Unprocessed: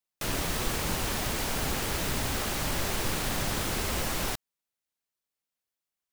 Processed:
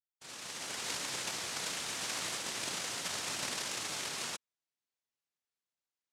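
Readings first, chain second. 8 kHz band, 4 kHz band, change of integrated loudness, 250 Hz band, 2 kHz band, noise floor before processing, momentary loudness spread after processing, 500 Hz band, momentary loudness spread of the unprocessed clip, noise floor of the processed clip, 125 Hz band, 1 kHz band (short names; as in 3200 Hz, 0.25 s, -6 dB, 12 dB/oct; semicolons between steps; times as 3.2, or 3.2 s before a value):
-3.5 dB, -3.0 dB, -6.5 dB, -15.0 dB, -6.0 dB, under -85 dBFS, 6 LU, -12.0 dB, 1 LU, under -85 dBFS, -20.5 dB, -9.0 dB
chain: opening faded in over 0.91 s; brick-wall FIR band-stop 290–2400 Hz; noise vocoder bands 1; gain -3 dB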